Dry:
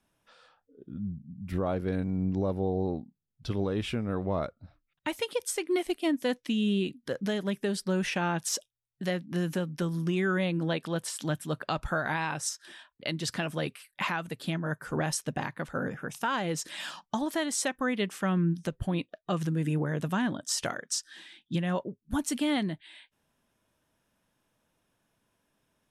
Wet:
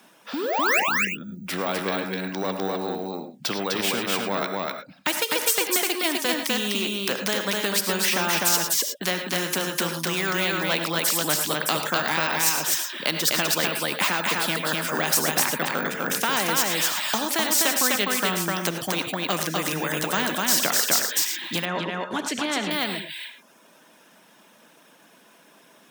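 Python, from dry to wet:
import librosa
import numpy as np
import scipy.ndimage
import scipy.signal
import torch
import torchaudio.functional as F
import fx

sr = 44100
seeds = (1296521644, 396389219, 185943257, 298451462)

p1 = fx.dereverb_blind(x, sr, rt60_s=0.75)
p2 = fx.spec_paint(p1, sr, seeds[0], shape='rise', start_s=0.33, length_s=0.47, low_hz=250.0, high_hz=2900.0, level_db=-25.0)
p3 = fx.low_shelf(p2, sr, hz=350.0, db=-5.5)
p4 = np.clip(10.0 ** (28.0 / 20.0) * p3, -1.0, 1.0) / 10.0 ** (28.0 / 20.0)
p5 = p3 + F.gain(torch.from_numpy(p4), -10.0).numpy()
p6 = scipy.signal.sosfilt(scipy.signal.butter(6, 170.0, 'highpass', fs=sr, output='sos'), p5)
p7 = p6 + fx.echo_single(p6, sr, ms=252, db=-3.5, dry=0)
p8 = fx.rev_gated(p7, sr, seeds[1], gate_ms=130, shape='rising', drr_db=10.5)
p9 = np.repeat(scipy.signal.resample_poly(p8, 1, 2), 2)[:len(p8)]
p10 = fx.spacing_loss(p9, sr, db_at_10k=22, at=(21.65, 22.71))
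p11 = fx.spectral_comp(p10, sr, ratio=2.0)
y = F.gain(torch.from_numpy(p11), 7.5).numpy()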